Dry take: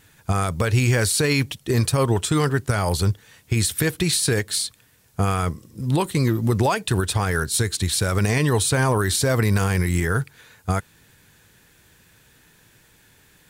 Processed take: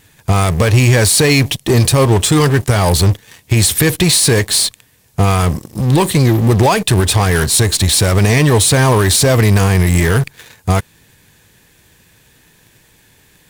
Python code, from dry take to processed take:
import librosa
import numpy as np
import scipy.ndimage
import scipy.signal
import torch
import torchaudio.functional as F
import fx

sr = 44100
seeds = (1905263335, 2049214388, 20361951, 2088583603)

p1 = fx.fuzz(x, sr, gain_db=36.0, gate_db=-45.0)
p2 = x + (p1 * librosa.db_to_amplitude(-10.0))
p3 = fx.peak_eq(p2, sr, hz=1400.0, db=-7.0, octaves=0.26)
y = p3 * librosa.db_to_amplitude(5.5)